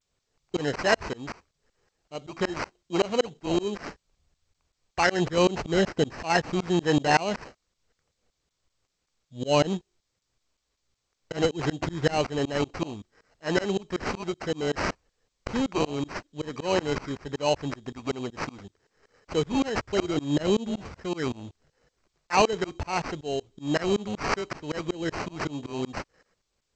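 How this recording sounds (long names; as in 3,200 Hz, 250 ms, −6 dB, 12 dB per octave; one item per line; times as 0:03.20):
aliases and images of a low sample rate 3,500 Hz, jitter 0%
tremolo saw up 5.3 Hz, depth 100%
G.722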